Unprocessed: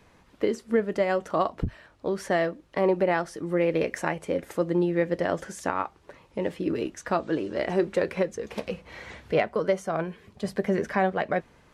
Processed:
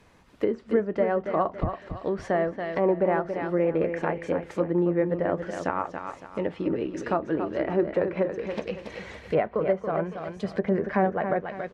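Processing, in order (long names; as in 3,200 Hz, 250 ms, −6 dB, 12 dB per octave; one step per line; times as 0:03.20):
repeating echo 280 ms, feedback 35%, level −8 dB
treble cut that deepens with the level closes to 1,500 Hz, closed at −22 dBFS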